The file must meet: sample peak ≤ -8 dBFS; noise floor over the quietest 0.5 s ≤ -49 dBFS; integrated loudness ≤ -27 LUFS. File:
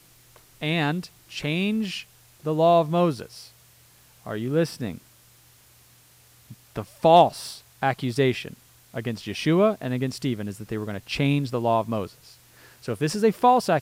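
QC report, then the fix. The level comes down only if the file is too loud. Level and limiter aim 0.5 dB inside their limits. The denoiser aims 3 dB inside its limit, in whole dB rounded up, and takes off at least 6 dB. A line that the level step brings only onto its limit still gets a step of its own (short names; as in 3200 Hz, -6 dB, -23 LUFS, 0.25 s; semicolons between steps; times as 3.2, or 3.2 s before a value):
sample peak -5.0 dBFS: fail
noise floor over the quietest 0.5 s -55 dBFS: OK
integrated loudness -24.0 LUFS: fail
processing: gain -3.5 dB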